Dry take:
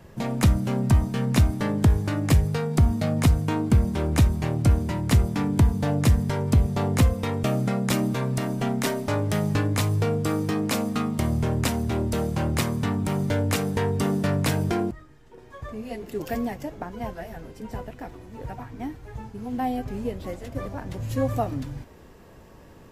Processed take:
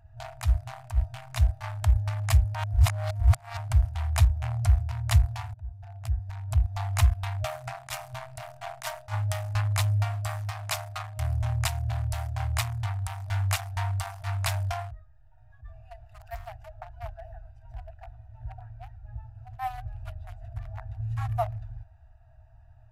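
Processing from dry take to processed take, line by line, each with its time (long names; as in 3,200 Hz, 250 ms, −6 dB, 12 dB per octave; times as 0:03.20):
0:02.55–0:03.57: reverse
0:05.54–0:06.98: fade in, from −21 dB
whole clip: adaptive Wiener filter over 41 samples; brick-wall band-stop 120–620 Hz; level that may rise only so fast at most 280 dB per second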